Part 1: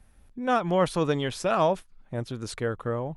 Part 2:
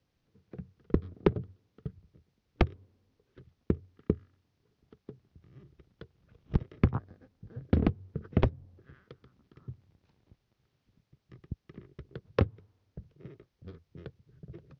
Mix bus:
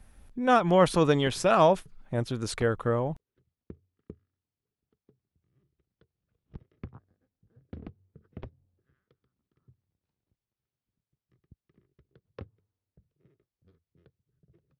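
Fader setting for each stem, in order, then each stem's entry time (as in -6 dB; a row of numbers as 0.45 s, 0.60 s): +2.5 dB, -17.5 dB; 0.00 s, 0.00 s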